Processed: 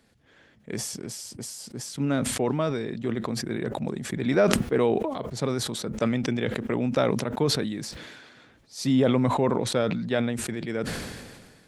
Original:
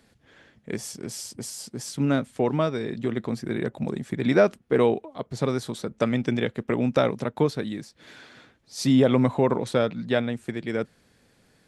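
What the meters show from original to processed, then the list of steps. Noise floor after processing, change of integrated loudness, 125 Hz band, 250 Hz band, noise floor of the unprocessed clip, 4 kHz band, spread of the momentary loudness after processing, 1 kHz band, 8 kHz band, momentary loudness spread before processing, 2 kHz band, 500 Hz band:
-58 dBFS, -1.5 dB, -1.0 dB, -1.5 dB, -63 dBFS, +3.5 dB, 14 LU, 0.0 dB, +4.5 dB, 14 LU, -1.0 dB, -2.0 dB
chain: sustainer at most 36 dB/s; gain -3 dB

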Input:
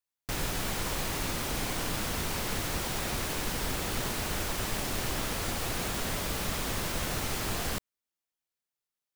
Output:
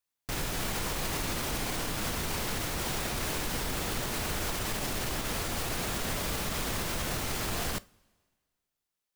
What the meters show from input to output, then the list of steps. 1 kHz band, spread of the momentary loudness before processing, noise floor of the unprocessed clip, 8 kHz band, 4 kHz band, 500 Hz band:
0.0 dB, 0 LU, under -85 dBFS, 0.0 dB, 0.0 dB, 0.0 dB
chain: limiter -26 dBFS, peak gain reduction 7.5 dB; two-slope reverb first 0.3 s, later 1.7 s, from -18 dB, DRR 17 dB; gain +3 dB

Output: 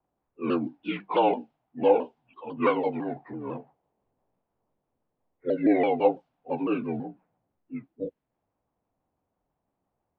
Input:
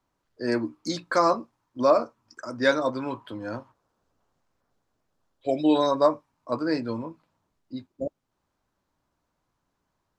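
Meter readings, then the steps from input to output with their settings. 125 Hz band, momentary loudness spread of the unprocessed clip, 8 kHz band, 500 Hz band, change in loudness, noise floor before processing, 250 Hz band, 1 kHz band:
-2.0 dB, 18 LU, n/a, -1.0 dB, -1.5 dB, -79 dBFS, -0.5 dB, -1.5 dB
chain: inharmonic rescaling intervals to 79%; low-pass opened by the level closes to 1300 Hz, open at -20 dBFS; shaped vibrato saw down 6 Hz, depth 160 cents

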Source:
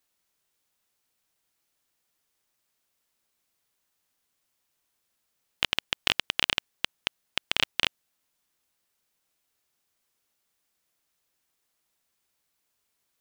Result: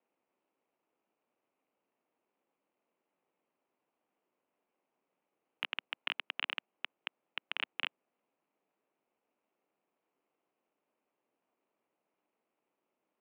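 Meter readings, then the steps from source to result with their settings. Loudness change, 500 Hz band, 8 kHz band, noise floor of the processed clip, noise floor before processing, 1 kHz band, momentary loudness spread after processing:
-11.5 dB, -13.5 dB, under -35 dB, under -85 dBFS, -78 dBFS, -9.5 dB, 7 LU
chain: median filter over 25 samples; mistuned SSB -63 Hz 300–3100 Hz; gain +5.5 dB

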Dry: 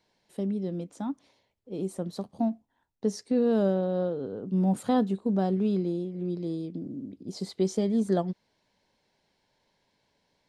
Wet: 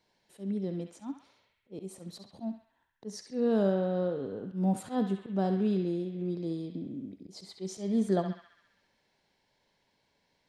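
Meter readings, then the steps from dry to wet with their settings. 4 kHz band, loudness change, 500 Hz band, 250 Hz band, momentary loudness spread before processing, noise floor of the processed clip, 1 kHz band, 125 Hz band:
-3.0 dB, -3.0 dB, -3.5 dB, -4.0 dB, 13 LU, -75 dBFS, -4.0 dB, -3.0 dB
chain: auto swell 0.139 s; narrowing echo 67 ms, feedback 77%, band-pass 2100 Hz, level -4.5 dB; gain -2 dB

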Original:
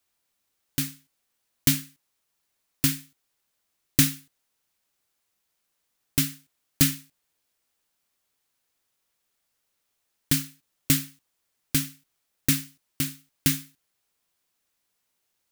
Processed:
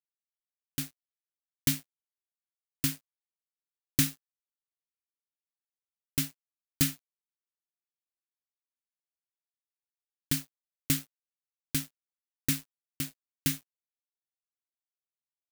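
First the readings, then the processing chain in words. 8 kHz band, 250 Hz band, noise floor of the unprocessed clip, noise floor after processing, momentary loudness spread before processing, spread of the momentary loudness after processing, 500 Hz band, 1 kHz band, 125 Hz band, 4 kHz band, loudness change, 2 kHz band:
-6.5 dB, -6.5 dB, -77 dBFS, under -85 dBFS, 15 LU, 10 LU, -6.0 dB, -6.0 dB, -6.5 dB, -6.5 dB, -6.5 dB, -6.5 dB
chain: crossover distortion -37.5 dBFS; gain -5.5 dB

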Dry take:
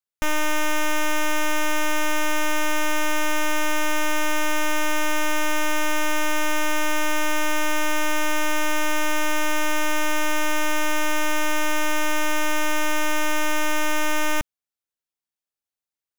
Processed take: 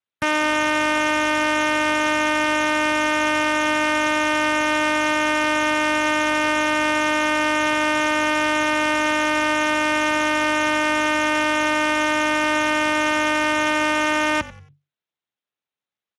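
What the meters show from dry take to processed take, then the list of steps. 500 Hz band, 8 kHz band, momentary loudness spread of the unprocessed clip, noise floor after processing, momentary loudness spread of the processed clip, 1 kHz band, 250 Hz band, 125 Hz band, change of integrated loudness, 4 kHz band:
+5.5 dB, -2.5 dB, 0 LU, under -85 dBFS, 0 LU, +5.5 dB, +5.5 dB, n/a, +4.5 dB, +4.0 dB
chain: frequency-shifting echo 92 ms, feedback 31%, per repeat -48 Hz, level -18 dB; downsampling 22050 Hz; gain +5.5 dB; Speex 24 kbps 32000 Hz

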